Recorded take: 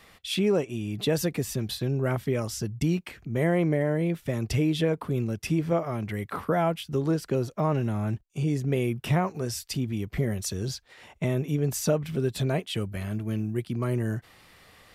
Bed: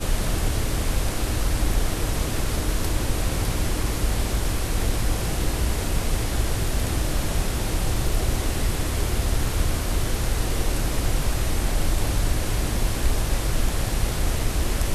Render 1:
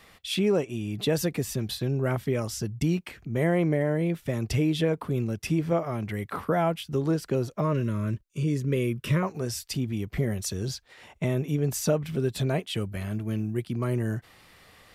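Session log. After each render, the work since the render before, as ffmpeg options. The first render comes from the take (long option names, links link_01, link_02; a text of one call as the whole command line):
ffmpeg -i in.wav -filter_complex "[0:a]asettb=1/sr,asplit=3[link_01][link_02][link_03];[link_01]atrim=end=7.614[link_04];[link_02]atrim=start=7.61:end=9.23,asetpts=PTS-STARTPTS,afade=type=in:duration=0.004:curve=qsin,afade=type=out:start_time=1.616:duration=0.004:curve=qsin,asuperstop=centerf=770:order=12:qfactor=2.5[link_05];[link_03]atrim=start=9.226[link_06];[link_04][link_05]acrossfade=duration=0.004:curve1=hsin:curve2=qsin[link_07];[link_07][link_06]acrossfade=duration=0.004:curve1=qsin:curve2=hsin" out.wav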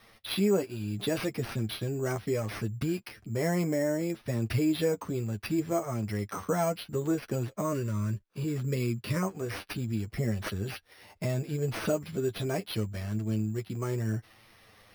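ffmpeg -i in.wav -af "acrusher=samples=6:mix=1:aa=0.000001,flanger=delay=8.8:depth=1.7:regen=18:speed=0.69:shape=sinusoidal" out.wav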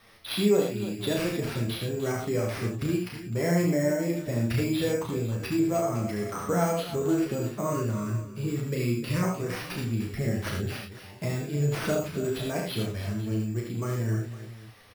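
ffmpeg -i in.wav -filter_complex "[0:a]asplit=2[link_01][link_02];[link_02]adelay=34,volume=-4.5dB[link_03];[link_01][link_03]amix=inputs=2:normalize=0,aecho=1:1:70|82|303|508:0.501|0.447|0.224|0.141" out.wav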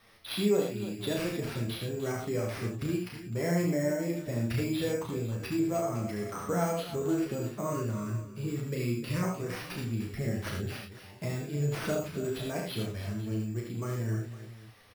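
ffmpeg -i in.wav -af "volume=-4dB" out.wav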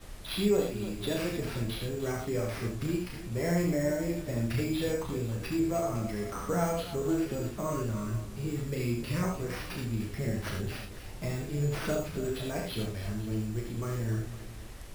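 ffmpeg -i in.wav -i bed.wav -filter_complex "[1:a]volume=-22.5dB[link_01];[0:a][link_01]amix=inputs=2:normalize=0" out.wav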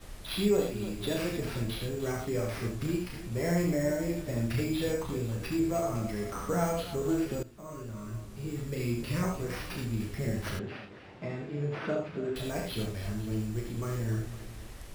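ffmpeg -i in.wav -filter_complex "[0:a]asettb=1/sr,asplit=3[link_01][link_02][link_03];[link_01]atrim=end=10.594[link_04];[link_02]atrim=start=10.59:end=12.36,asetpts=PTS-STARTPTS,afade=type=in:duration=0.004:curve=qsin,afade=type=out:start_time=1.766:duration=0.004:curve=qsin,highpass=160,lowpass=2600[link_05];[link_03]atrim=start=12.356[link_06];[link_04][link_05]acrossfade=duration=0.004:curve1=hsin:curve2=qsin[link_07];[link_07][link_06]acrossfade=duration=0.004:curve1=qsin:curve2=hsin,asplit=2[link_08][link_09];[link_08]atrim=end=7.43,asetpts=PTS-STARTPTS,afade=type=out:start_time=7.426:duration=0.004:curve=hsin:silence=0.141254[link_10];[link_09]atrim=start=7.43,asetpts=PTS-STARTPTS,afade=type=in:duration=1.57:silence=0.141254[link_11];[link_10][link_11]concat=n=2:v=0:a=1" out.wav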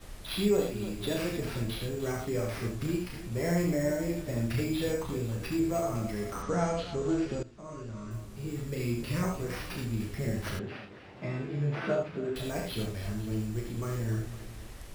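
ffmpeg -i in.wav -filter_complex "[0:a]asettb=1/sr,asplit=3[link_01][link_02][link_03];[link_01]atrim=end=6.424[link_04];[link_02]atrim=start=6.42:end=8.11,asetpts=PTS-STARTPTS,afade=type=in:duration=0.004:curve=qsin,afade=type=out:start_time=1.686:duration=0.004:curve=qsin,lowpass=frequency=7200:width=0.5412,lowpass=frequency=7200:width=1.3066[link_05];[link_03]atrim=start=8.106[link_06];[link_04][link_05]acrossfade=duration=0.004:curve1=hsin:curve2=qsin[link_07];[link_07][link_06]acrossfade=duration=0.004:curve1=qsin:curve2=hsin,asettb=1/sr,asplit=3[link_08][link_09][link_10];[link_08]atrim=end=11.154[link_11];[link_09]atrim=start=11.15:end=12.03,asetpts=PTS-STARTPTS,afade=type=in:duration=0.004:curve=qsin,afade=type=out:start_time=0.876:duration=0.004:curve=qsin,asplit=2[link_12][link_13];[link_13]adelay=15,volume=-2dB[link_14];[link_12][link_14]amix=inputs=2:normalize=0,atrim=end_sample=38808[link_15];[link_10]atrim=start=12.026[link_16];[link_11][link_15]acrossfade=duration=0.004:curve1=hsin:curve2=qsin[link_17];[link_17][link_16]acrossfade=duration=0.004:curve1=qsin:curve2=hsin" out.wav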